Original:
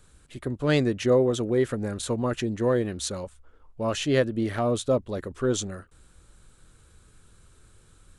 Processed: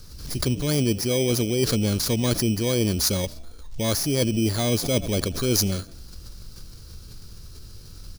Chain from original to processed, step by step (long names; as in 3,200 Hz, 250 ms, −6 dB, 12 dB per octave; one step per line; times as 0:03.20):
samples in bit-reversed order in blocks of 16 samples
reversed playback
downward compressor 6 to 1, threshold −29 dBFS, peak gain reduction 12.5 dB
reversed playback
low-shelf EQ 300 Hz +9.5 dB
surface crackle 480 per second −65 dBFS
parametric band 5,500 Hz +14.5 dB 1.5 octaves
on a send: echo with shifted repeats 86 ms, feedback 51%, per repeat +52 Hz, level −24 dB
on the sum: background raised ahead of every attack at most 78 dB per second
level +4 dB